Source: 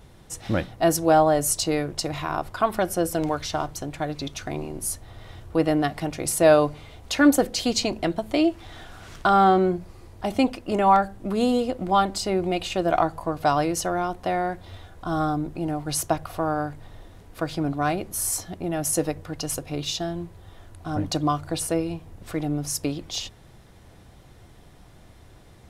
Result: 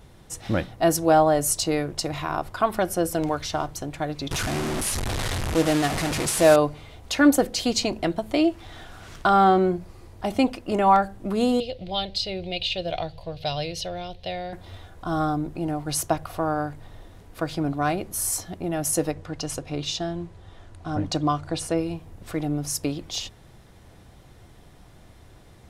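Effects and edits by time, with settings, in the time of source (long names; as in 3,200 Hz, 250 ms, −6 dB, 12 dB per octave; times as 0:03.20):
0:04.31–0:06.56: linear delta modulator 64 kbit/s, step −20.5 dBFS
0:11.60–0:14.53: drawn EQ curve 140 Hz 0 dB, 280 Hz −17 dB, 530 Hz −2 dB, 1,200 Hz −20 dB, 2,800 Hz +5 dB, 4,100 Hz +9 dB, 7,400 Hz −14 dB
0:19.11–0:21.78: low-pass filter 7,900 Hz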